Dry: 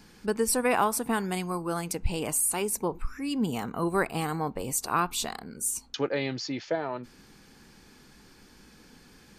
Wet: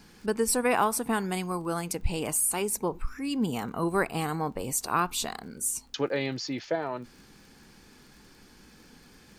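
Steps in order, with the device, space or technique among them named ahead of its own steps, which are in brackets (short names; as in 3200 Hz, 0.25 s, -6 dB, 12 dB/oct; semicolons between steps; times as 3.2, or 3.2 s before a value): vinyl LP (wow and flutter 18 cents; crackle 30/s -45 dBFS; pink noise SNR 42 dB)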